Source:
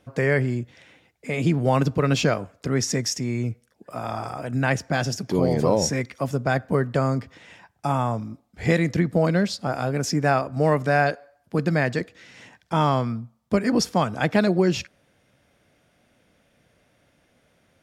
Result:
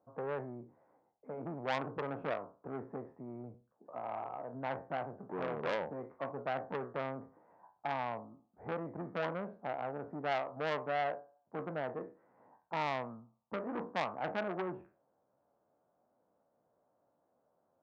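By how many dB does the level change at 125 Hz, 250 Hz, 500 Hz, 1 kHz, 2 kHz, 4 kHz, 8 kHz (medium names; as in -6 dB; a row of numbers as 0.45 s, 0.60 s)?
-24.5 dB, -20.5 dB, -14.5 dB, -11.5 dB, -15.0 dB, -18.5 dB, under -35 dB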